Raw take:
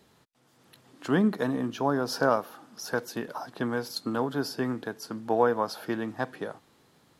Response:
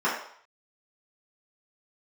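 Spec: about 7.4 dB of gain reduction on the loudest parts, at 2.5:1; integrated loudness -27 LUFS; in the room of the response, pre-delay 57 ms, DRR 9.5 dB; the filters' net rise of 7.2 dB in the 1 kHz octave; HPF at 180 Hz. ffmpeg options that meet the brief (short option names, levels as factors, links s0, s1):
-filter_complex "[0:a]highpass=180,equalizer=f=1000:t=o:g=9,acompressor=threshold=0.0631:ratio=2.5,asplit=2[s0][s1];[1:a]atrim=start_sample=2205,adelay=57[s2];[s1][s2]afir=irnorm=-1:irlink=0,volume=0.0596[s3];[s0][s3]amix=inputs=2:normalize=0,volume=1.41"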